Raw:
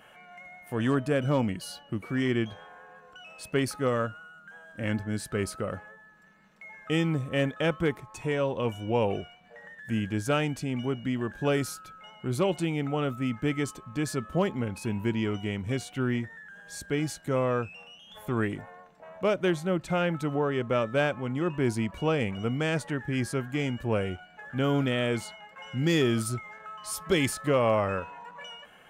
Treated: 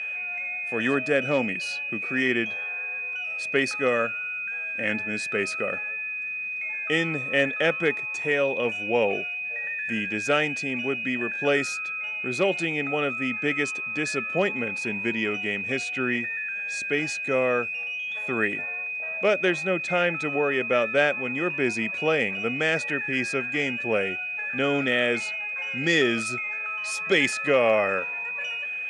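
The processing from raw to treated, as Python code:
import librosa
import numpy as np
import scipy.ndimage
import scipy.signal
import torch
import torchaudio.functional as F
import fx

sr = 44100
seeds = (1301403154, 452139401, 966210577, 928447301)

y = x + 10.0 ** (-35.0 / 20.0) * np.sin(2.0 * np.pi * 2500.0 * np.arange(len(x)) / sr)
y = fx.cabinet(y, sr, low_hz=290.0, low_slope=12, high_hz=7800.0, hz=(320.0, 1000.0, 1900.0), db=(-4, -10, 7))
y = y * 10.0 ** (5.0 / 20.0)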